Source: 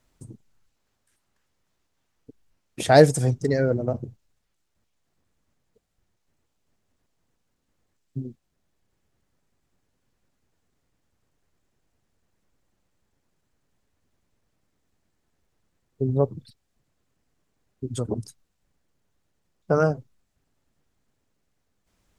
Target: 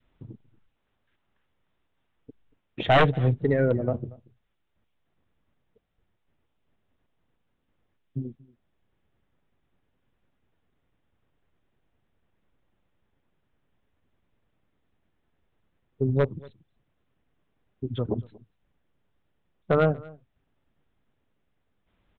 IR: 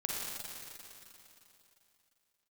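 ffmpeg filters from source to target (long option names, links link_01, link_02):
-filter_complex "[0:a]adynamicequalizer=threshold=0.0224:dfrequency=830:dqfactor=1.4:tfrequency=830:tqfactor=1.4:attack=5:release=100:ratio=0.375:range=1.5:mode=cutabove:tftype=bell,aresample=8000,aeval=exprs='0.251*(abs(mod(val(0)/0.251+3,4)-2)-1)':channel_layout=same,aresample=44100,aeval=exprs='0.282*(cos(1*acos(clip(val(0)/0.282,-1,1)))-cos(1*PI/2))+0.00631*(cos(4*acos(clip(val(0)/0.282,-1,1)))-cos(4*PI/2))':channel_layout=same,asplit=2[link_01][link_02];[link_02]adelay=233.2,volume=-23dB,highshelf=frequency=4000:gain=-5.25[link_03];[link_01][link_03]amix=inputs=2:normalize=0"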